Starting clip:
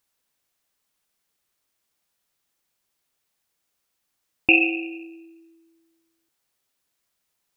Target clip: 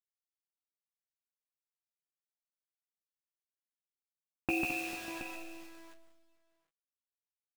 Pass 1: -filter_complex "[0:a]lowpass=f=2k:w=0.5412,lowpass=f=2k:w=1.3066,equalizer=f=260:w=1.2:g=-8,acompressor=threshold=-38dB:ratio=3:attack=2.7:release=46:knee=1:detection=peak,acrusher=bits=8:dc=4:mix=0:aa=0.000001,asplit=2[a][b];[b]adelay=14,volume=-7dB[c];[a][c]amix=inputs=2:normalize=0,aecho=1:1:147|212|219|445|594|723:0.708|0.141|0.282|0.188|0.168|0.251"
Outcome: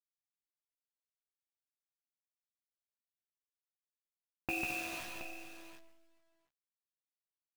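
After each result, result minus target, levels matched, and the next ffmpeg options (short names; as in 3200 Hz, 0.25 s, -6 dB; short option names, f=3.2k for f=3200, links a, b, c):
250 Hz band -4.5 dB; compressor: peak gain reduction +2.5 dB
-filter_complex "[0:a]lowpass=f=2k:w=0.5412,lowpass=f=2k:w=1.3066,acompressor=threshold=-38dB:ratio=3:attack=2.7:release=46:knee=1:detection=peak,acrusher=bits=8:dc=4:mix=0:aa=0.000001,asplit=2[a][b];[b]adelay=14,volume=-7dB[c];[a][c]amix=inputs=2:normalize=0,aecho=1:1:147|212|219|445|594|723:0.708|0.141|0.282|0.188|0.168|0.251"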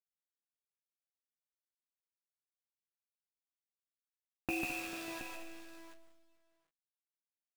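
compressor: peak gain reduction +4.5 dB
-filter_complex "[0:a]lowpass=f=2k:w=0.5412,lowpass=f=2k:w=1.3066,acompressor=threshold=-31.5dB:ratio=3:attack=2.7:release=46:knee=1:detection=peak,acrusher=bits=8:dc=4:mix=0:aa=0.000001,asplit=2[a][b];[b]adelay=14,volume=-7dB[c];[a][c]amix=inputs=2:normalize=0,aecho=1:1:147|212|219|445|594|723:0.708|0.141|0.282|0.188|0.168|0.251"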